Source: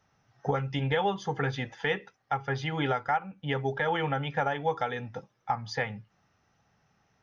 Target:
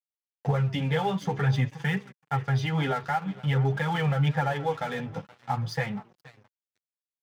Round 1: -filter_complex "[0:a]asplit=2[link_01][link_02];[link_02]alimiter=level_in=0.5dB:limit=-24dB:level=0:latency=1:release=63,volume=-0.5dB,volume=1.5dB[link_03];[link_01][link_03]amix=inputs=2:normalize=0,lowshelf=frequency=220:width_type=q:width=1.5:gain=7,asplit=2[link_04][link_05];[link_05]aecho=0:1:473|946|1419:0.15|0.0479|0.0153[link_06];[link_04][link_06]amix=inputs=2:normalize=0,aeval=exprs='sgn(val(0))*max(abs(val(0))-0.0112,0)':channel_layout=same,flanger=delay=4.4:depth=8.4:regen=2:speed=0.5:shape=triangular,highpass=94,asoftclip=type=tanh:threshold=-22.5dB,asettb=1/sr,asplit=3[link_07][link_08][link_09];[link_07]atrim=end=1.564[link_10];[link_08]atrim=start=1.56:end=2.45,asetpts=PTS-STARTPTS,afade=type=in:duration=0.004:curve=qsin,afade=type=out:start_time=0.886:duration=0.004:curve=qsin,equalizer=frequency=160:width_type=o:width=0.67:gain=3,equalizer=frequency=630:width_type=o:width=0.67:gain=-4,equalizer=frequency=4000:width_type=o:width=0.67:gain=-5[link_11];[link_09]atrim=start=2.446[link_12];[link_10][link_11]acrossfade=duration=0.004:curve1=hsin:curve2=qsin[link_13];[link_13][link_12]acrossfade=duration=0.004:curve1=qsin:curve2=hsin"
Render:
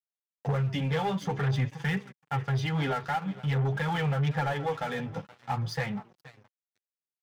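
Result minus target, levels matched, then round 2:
soft clipping: distortion +13 dB
-filter_complex "[0:a]asplit=2[link_01][link_02];[link_02]alimiter=level_in=0.5dB:limit=-24dB:level=0:latency=1:release=63,volume=-0.5dB,volume=1.5dB[link_03];[link_01][link_03]amix=inputs=2:normalize=0,lowshelf=frequency=220:width_type=q:width=1.5:gain=7,asplit=2[link_04][link_05];[link_05]aecho=0:1:473|946|1419:0.15|0.0479|0.0153[link_06];[link_04][link_06]amix=inputs=2:normalize=0,aeval=exprs='sgn(val(0))*max(abs(val(0))-0.0112,0)':channel_layout=same,flanger=delay=4.4:depth=8.4:regen=2:speed=0.5:shape=triangular,highpass=94,asoftclip=type=tanh:threshold=-13.5dB,asettb=1/sr,asplit=3[link_07][link_08][link_09];[link_07]atrim=end=1.564[link_10];[link_08]atrim=start=1.56:end=2.45,asetpts=PTS-STARTPTS,afade=type=in:duration=0.004:curve=qsin,afade=type=out:start_time=0.886:duration=0.004:curve=qsin,equalizer=frequency=160:width_type=o:width=0.67:gain=3,equalizer=frequency=630:width_type=o:width=0.67:gain=-4,equalizer=frequency=4000:width_type=o:width=0.67:gain=-5[link_11];[link_09]atrim=start=2.446[link_12];[link_10][link_11]acrossfade=duration=0.004:curve1=hsin:curve2=qsin[link_13];[link_13][link_12]acrossfade=duration=0.004:curve1=qsin:curve2=hsin"

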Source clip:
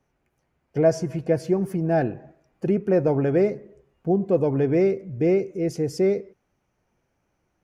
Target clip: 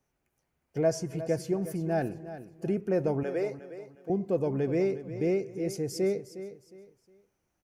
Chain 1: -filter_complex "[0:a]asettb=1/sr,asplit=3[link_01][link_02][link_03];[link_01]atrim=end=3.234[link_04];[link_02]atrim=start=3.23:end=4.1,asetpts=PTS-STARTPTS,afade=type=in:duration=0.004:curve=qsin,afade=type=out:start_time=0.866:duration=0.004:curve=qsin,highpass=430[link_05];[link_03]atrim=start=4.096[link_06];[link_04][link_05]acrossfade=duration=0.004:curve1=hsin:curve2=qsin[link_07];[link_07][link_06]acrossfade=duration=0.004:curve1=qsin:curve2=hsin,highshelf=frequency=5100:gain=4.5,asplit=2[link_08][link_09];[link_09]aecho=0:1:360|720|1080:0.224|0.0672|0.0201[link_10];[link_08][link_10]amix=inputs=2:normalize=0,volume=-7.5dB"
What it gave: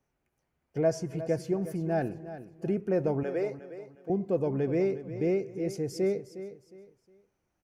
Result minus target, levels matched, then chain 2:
8,000 Hz band −4.5 dB
-filter_complex "[0:a]asettb=1/sr,asplit=3[link_01][link_02][link_03];[link_01]atrim=end=3.234[link_04];[link_02]atrim=start=3.23:end=4.1,asetpts=PTS-STARTPTS,afade=type=in:duration=0.004:curve=qsin,afade=type=out:start_time=0.866:duration=0.004:curve=qsin,highpass=430[link_05];[link_03]atrim=start=4.096[link_06];[link_04][link_05]acrossfade=duration=0.004:curve1=hsin:curve2=qsin[link_07];[link_07][link_06]acrossfade=duration=0.004:curve1=qsin:curve2=hsin,highshelf=frequency=5100:gain=11.5,asplit=2[link_08][link_09];[link_09]aecho=0:1:360|720|1080:0.224|0.0672|0.0201[link_10];[link_08][link_10]amix=inputs=2:normalize=0,volume=-7.5dB"

